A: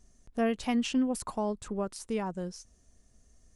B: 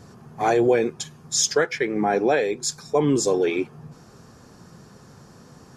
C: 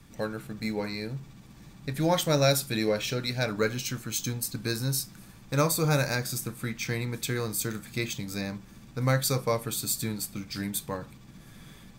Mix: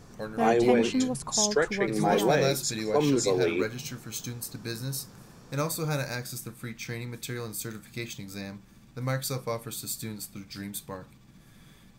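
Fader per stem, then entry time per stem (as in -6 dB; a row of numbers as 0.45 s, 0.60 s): +0.5 dB, -4.5 dB, -5.0 dB; 0.00 s, 0.00 s, 0.00 s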